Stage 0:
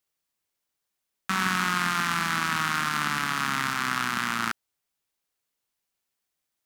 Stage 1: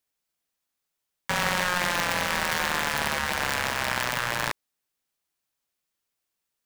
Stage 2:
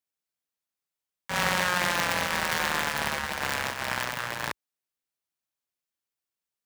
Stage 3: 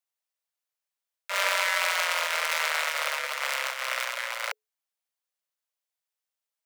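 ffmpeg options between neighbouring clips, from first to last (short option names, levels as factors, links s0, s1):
-af "aeval=exprs='val(0)*sgn(sin(2*PI*360*n/s))':c=same"
-af "highpass=42,agate=range=0.398:threshold=0.0501:ratio=16:detection=peak"
-af "afreqshift=430"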